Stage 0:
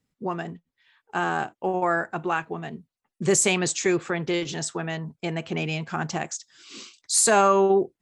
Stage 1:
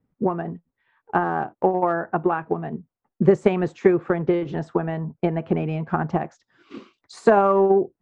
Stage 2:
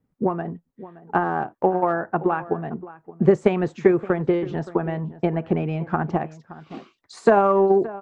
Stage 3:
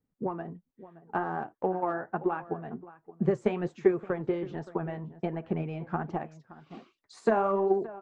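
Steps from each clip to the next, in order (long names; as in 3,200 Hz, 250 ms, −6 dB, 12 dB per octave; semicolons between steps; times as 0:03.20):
low-pass filter 1,100 Hz 12 dB per octave; in parallel at −1 dB: downward compressor, threshold −30 dBFS, peak gain reduction 13.5 dB; on the sum: transient designer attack +7 dB, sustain 0 dB
slap from a distant wall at 98 metres, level −17 dB
flanger 1.3 Hz, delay 2.1 ms, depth 7.4 ms, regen +59%; level −5 dB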